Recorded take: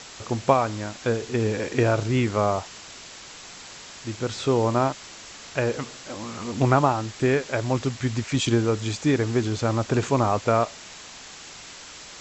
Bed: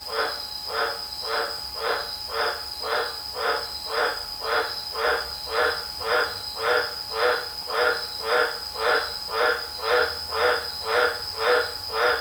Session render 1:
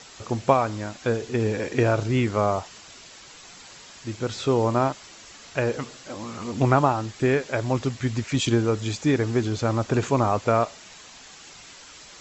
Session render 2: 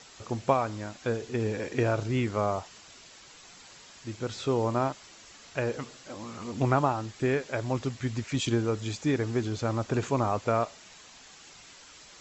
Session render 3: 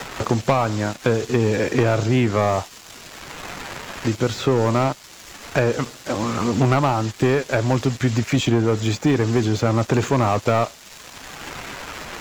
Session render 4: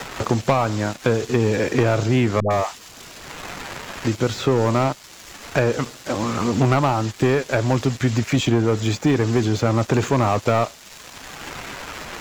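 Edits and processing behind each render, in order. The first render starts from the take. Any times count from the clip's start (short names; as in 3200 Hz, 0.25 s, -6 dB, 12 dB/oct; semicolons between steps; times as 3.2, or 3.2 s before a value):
denoiser 6 dB, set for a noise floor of -43 dBFS
gain -5.5 dB
sample leveller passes 3; three-band squash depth 70%
2.4–3.25 dispersion highs, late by 0.105 s, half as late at 560 Hz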